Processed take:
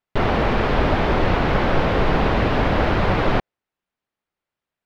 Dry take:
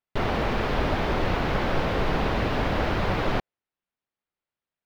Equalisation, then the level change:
high-shelf EQ 6,300 Hz −11.5 dB
+6.5 dB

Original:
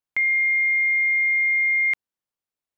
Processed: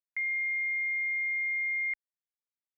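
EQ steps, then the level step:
resonant band-pass 2,000 Hz, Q 3.9
spectral tilt −5 dB per octave
−4.5 dB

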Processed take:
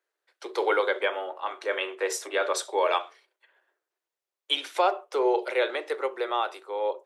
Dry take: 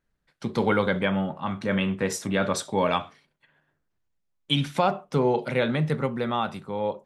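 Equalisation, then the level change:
Butterworth high-pass 340 Hz 72 dB per octave
0.0 dB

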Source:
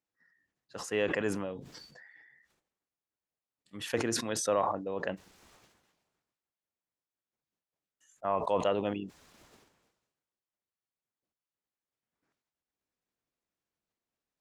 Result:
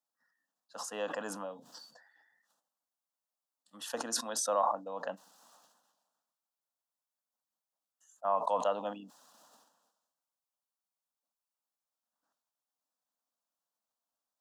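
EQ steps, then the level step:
high-pass filter 250 Hz 24 dB per octave
phaser with its sweep stopped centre 910 Hz, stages 4
+2.0 dB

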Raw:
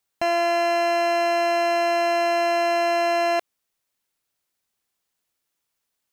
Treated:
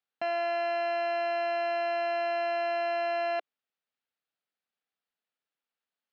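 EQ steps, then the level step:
high-frequency loss of the air 230 metres
loudspeaker in its box 260–8,600 Hz, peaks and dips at 350 Hz −10 dB, 590 Hz −4 dB, 1,000 Hz −7 dB, 2,100 Hz −3 dB, 6,100 Hz −8 dB
−4.5 dB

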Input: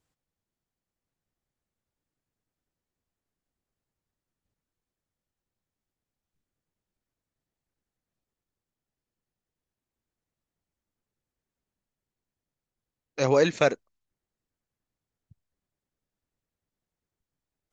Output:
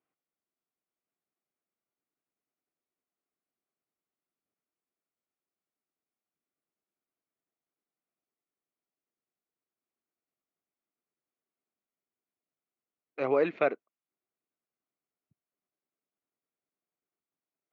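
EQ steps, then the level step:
loudspeaker in its box 350–2,300 Hz, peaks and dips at 520 Hz −6 dB, 910 Hz −7 dB, 1,700 Hz −9 dB
0.0 dB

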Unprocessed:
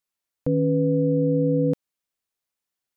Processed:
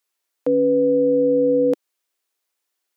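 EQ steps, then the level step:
Chebyshev high-pass filter 330 Hz, order 3
+8.0 dB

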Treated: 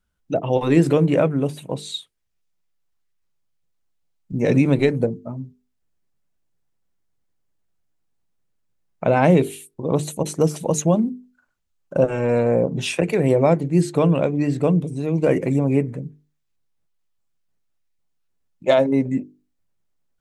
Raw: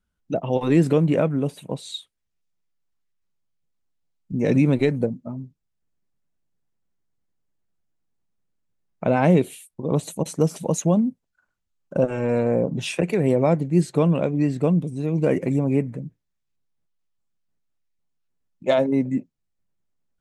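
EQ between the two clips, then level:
parametric band 210 Hz −3.5 dB 0.59 octaves
mains-hum notches 50/100/150/200/250/300/350/400/450 Hz
+3.5 dB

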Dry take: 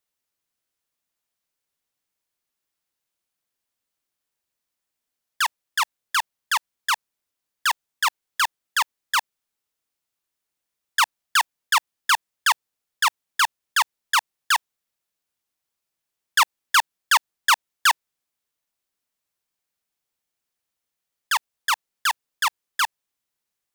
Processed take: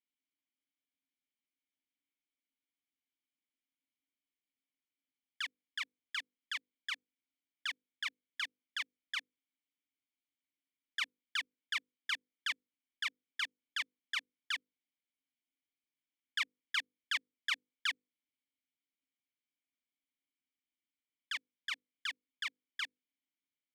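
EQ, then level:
mains-hum notches 50/100/150/200/250/300/350/400/450/500 Hz
dynamic equaliser 2,800 Hz, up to −6 dB, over −34 dBFS, Q 1.7
formant filter i
+3.0 dB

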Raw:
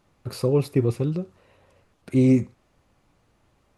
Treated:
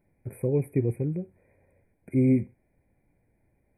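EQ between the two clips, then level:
linear-phase brick-wall band-stop 2,500–7,800 Hz
phaser with its sweep stopped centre 2,900 Hz, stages 4
−3.5 dB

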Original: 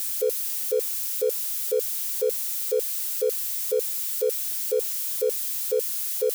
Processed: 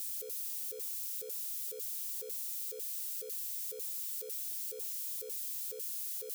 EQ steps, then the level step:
guitar amp tone stack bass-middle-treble 6-0-2
+3.5 dB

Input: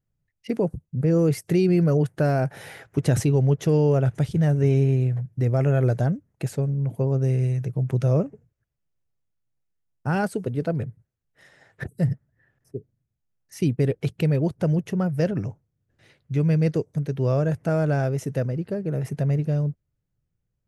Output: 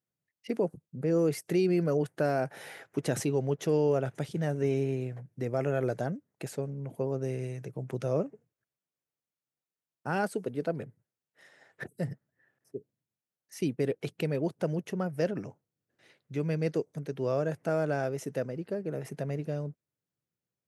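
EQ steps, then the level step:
high-pass filter 240 Hz 12 dB per octave
−4.0 dB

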